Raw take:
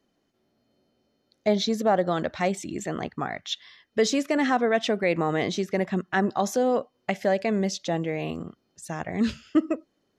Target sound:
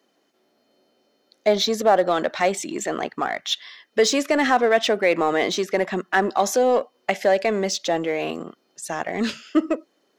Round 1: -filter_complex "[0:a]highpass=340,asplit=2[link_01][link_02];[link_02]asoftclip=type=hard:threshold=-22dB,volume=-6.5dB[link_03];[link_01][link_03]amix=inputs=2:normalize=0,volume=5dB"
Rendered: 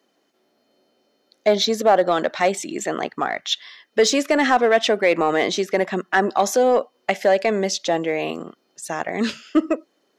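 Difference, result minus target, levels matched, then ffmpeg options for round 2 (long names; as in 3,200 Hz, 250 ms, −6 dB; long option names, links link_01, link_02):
hard clipping: distortion −7 dB
-filter_complex "[0:a]highpass=340,asplit=2[link_01][link_02];[link_02]asoftclip=type=hard:threshold=-33dB,volume=-6.5dB[link_03];[link_01][link_03]amix=inputs=2:normalize=0,volume=5dB"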